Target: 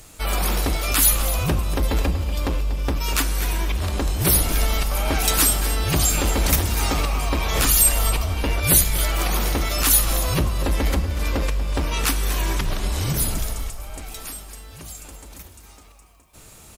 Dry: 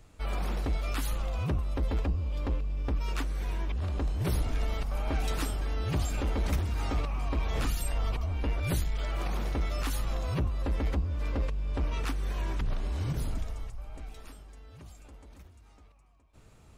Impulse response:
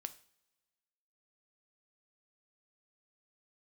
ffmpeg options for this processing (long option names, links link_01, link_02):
-filter_complex "[0:a]aemphasis=mode=production:type=75fm,aecho=1:1:240:0.237,asplit=2[link_01][link_02];[1:a]atrim=start_sample=2205,asetrate=28665,aresample=44100,lowshelf=frequency=170:gain=-6.5[link_03];[link_02][link_03]afir=irnorm=-1:irlink=0,volume=11.5dB[link_04];[link_01][link_04]amix=inputs=2:normalize=0,volume=-1dB"